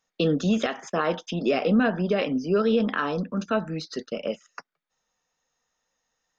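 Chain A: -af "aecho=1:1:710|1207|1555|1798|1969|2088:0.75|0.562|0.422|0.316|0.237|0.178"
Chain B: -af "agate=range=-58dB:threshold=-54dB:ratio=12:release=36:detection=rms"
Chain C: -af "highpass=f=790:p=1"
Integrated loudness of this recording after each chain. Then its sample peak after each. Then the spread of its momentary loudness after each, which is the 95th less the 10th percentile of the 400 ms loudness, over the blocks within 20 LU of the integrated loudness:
-23.0, -25.5, -31.5 LUFS; -8.0, -11.5, -13.5 dBFS; 13, 11, 9 LU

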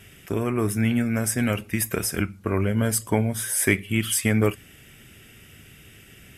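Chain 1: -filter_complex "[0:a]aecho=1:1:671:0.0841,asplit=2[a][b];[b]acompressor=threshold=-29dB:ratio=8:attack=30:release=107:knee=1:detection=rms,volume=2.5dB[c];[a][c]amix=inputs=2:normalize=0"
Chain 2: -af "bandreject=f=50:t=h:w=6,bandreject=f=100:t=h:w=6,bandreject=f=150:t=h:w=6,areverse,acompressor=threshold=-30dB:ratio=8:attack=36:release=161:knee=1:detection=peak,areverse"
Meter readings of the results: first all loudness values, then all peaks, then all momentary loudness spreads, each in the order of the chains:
-20.0, -31.0 LUFS; -2.0, -14.5 dBFS; 16, 19 LU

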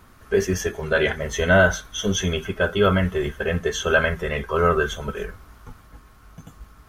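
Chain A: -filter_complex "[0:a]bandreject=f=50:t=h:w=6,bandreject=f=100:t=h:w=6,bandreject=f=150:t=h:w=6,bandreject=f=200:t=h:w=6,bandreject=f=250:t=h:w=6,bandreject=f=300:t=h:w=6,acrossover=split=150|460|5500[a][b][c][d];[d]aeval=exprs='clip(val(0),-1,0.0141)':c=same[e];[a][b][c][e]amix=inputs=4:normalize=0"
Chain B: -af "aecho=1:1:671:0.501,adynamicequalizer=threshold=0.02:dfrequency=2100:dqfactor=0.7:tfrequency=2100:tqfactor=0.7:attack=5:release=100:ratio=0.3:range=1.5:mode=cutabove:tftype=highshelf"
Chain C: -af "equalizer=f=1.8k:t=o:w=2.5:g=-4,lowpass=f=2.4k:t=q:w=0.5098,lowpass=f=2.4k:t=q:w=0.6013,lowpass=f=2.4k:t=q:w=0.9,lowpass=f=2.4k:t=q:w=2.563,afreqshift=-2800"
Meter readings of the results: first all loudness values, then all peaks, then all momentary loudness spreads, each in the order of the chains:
-22.0, -21.5, -20.5 LUFS; -5.0, -4.5, -6.0 dBFS; 9, 9, 14 LU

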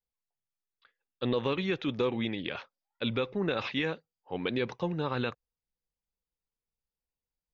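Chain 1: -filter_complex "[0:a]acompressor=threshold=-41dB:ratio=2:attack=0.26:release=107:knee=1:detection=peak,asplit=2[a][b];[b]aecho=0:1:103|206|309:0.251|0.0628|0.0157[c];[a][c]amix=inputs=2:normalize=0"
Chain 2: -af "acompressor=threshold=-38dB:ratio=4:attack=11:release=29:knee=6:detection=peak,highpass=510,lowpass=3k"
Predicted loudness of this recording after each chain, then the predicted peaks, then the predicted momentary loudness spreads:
-42.0, -43.5 LUFS; -27.5, -24.0 dBFS; 8, 8 LU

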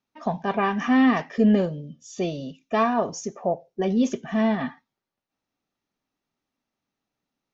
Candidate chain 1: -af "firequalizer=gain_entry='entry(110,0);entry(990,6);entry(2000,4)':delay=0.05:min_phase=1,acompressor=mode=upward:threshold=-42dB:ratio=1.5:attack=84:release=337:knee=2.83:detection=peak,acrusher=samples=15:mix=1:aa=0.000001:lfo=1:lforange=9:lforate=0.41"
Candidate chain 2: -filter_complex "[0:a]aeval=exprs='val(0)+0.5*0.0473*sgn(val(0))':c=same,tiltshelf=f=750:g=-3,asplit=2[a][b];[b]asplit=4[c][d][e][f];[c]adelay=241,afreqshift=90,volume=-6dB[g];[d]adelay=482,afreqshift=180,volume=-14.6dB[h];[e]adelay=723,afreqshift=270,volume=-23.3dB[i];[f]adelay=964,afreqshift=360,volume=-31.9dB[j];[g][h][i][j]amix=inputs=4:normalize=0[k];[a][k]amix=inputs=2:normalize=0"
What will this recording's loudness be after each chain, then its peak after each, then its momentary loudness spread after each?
-21.0, -23.5 LUFS; -5.0, -7.5 dBFS; 11, 10 LU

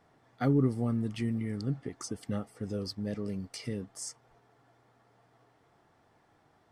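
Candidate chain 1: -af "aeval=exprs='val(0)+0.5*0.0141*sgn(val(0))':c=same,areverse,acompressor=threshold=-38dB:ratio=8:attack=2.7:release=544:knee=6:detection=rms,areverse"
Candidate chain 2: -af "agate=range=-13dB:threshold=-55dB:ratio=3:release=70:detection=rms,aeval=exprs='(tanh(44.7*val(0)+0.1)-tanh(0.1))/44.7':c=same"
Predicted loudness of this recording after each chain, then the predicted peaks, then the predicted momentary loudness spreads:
-43.5, -40.0 LUFS; -33.5, -32.0 dBFS; 4, 6 LU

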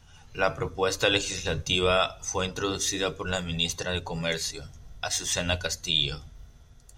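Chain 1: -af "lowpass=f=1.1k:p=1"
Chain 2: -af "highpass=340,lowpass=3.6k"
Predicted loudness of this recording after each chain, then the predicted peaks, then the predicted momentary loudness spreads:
-31.5, -29.5 LUFS; -12.5, -8.5 dBFS; 13, 9 LU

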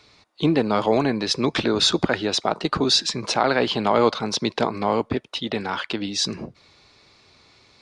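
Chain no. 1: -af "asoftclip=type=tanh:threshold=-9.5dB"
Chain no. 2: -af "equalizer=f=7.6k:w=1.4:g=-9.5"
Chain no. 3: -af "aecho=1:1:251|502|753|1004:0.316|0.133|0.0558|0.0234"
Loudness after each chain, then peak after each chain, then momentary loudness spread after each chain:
-23.0, -23.0, -21.5 LUFS; -10.0, -5.5, -5.0 dBFS; 7, 8, 8 LU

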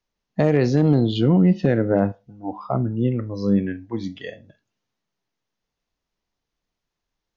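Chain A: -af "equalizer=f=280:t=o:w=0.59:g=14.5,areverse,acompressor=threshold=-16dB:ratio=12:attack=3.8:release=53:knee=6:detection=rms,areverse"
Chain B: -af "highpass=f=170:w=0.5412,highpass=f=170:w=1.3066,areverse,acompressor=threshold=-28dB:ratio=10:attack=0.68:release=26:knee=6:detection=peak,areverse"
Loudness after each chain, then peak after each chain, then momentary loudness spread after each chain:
-22.0, -33.5 LUFS; -11.0, -23.0 dBFS; 7, 8 LU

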